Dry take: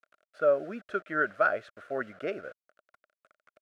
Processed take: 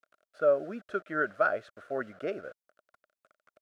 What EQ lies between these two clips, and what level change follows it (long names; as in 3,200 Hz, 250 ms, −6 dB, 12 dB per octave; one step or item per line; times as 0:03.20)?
parametric band 2,200 Hz −4.5 dB 1.2 octaves
0.0 dB